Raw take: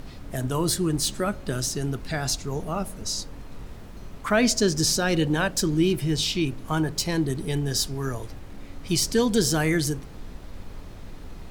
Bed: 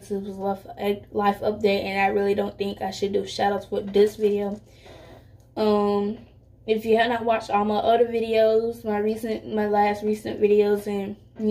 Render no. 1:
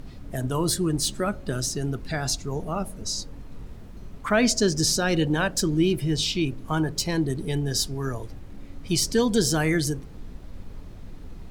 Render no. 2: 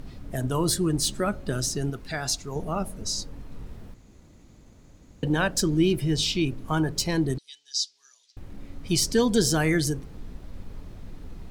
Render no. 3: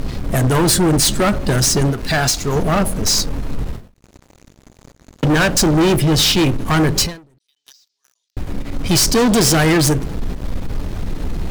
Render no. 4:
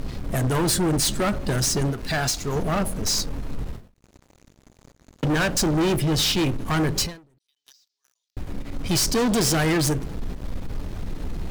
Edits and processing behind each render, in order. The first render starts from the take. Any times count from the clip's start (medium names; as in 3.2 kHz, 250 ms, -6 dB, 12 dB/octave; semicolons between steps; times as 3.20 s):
noise reduction 6 dB, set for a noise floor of -41 dBFS
1.90–2.56 s: bass shelf 460 Hz -6.5 dB; 3.94–5.23 s: room tone; 7.38–8.37 s: Butterworth band-pass 4.9 kHz, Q 1.6
waveshaping leveller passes 5; endings held to a fixed fall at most 150 dB/s
trim -7.5 dB